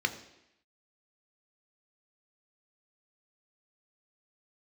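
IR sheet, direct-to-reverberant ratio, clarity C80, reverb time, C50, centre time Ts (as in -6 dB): 6.5 dB, 14.5 dB, 0.85 s, 13.0 dB, 10 ms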